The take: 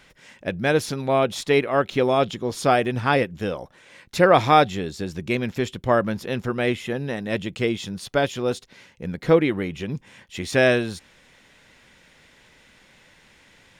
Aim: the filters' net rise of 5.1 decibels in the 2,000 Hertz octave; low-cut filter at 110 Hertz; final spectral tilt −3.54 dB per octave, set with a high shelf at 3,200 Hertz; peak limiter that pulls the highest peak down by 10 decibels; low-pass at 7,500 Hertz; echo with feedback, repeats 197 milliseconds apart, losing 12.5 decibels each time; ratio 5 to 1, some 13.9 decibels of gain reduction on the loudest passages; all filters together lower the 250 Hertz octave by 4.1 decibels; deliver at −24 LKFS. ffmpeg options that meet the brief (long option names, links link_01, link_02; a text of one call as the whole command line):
ffmpeg -i in.wav -af "highpass=110,lowpass=7500,equalizer=frequency=250:width_type=o:gain=-5.5,equalizer=frequency=2000:width_type=o:gain=8,highshelf=frequency=3200:gain=-4.5,acompressor=threshold=-26dB:ratio=5,alimiter=limit=-21dB:level=0:latency=1,aecho=1:1:197|394|591:0.237|0.0569|0.0137,volume=9.5dB" out.wav